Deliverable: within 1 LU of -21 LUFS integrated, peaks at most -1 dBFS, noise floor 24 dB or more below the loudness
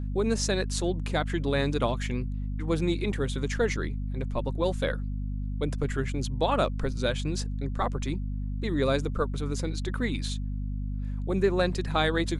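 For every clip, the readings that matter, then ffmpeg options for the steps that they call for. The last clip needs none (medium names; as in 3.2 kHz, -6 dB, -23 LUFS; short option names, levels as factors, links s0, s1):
hum 50 Hz; highest harmonic 250 Hz; hum level -29 dBFS; loudness -29.5 LUFS; peak level -12.0 dBFS; loudness target -21.0 LUFS
-> -af "bandreject=f=50:t=h:w=6,bandreject=f=100:t=h:w=6,bandreject=f=150:t=h:w=6,bandreject=f=200:t=h:w=6,bandreject=f=250:t=h:w=6"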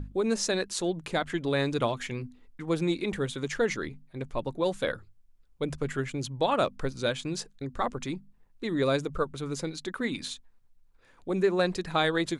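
hum not found; loudness -30.5 LUFS; peak level -12.0 dBFS; loudness target -21.0 LUFS
-> -af "volume=2.99"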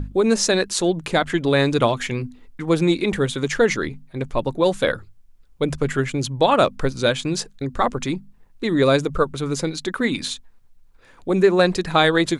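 loudness -21.0 LUFS; peak level -2.5 dBFS; noise floor -51 dBFS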